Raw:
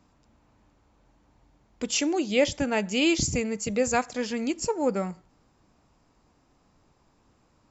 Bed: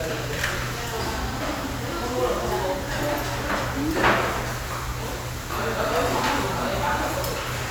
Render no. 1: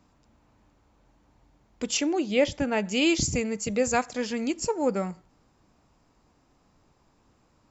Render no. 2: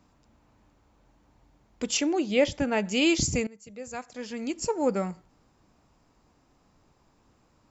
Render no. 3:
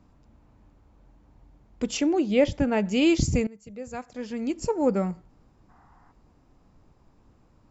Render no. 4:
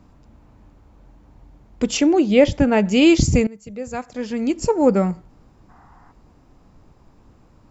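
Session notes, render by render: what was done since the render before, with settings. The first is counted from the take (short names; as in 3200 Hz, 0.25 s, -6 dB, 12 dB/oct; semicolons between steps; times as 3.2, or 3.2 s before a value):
1.97–2.85 high shelf 5600 Hz -10.5 dB
3.47–4.75 fade in quadratic, from -19.5 dB
5.7–6.11 spectral gain 700–2100 Hz +12 dB; tilt -2 dB/oct
gain +7.5 dB; limiter -3 dBFS, peak gain reduction 1.5 dB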